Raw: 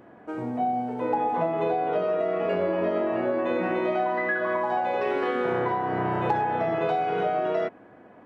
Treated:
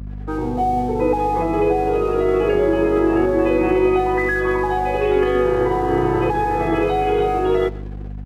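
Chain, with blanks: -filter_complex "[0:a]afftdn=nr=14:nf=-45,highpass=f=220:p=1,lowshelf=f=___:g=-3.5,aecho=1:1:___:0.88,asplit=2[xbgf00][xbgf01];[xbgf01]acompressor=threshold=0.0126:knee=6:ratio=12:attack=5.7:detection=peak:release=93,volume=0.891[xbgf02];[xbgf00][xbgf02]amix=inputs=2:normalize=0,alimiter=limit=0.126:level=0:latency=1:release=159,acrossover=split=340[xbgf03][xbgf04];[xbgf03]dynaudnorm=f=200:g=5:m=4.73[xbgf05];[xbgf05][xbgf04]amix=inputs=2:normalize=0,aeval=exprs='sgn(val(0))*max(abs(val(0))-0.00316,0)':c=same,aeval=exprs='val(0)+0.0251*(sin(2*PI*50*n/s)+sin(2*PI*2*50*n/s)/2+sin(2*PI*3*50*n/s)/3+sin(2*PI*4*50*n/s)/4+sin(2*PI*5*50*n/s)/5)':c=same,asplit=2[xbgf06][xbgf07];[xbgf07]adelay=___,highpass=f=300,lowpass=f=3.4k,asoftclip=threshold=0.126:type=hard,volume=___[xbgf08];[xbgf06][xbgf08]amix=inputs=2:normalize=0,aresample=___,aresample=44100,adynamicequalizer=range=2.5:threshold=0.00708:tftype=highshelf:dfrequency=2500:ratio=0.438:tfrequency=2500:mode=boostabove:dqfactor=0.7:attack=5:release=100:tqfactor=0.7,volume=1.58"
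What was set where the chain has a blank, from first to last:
430, 2.4, 130, 0.1, 32000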